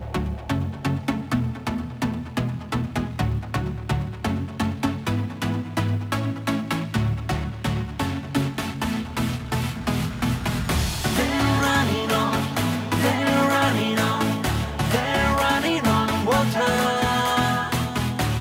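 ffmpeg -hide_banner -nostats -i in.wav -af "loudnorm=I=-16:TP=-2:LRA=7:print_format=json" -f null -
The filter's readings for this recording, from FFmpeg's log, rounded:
"input_i" : "-23.3",
"input_tp" : "-8.4",
"input_lra" : "5.7",
"input_thresh" : "-33.3",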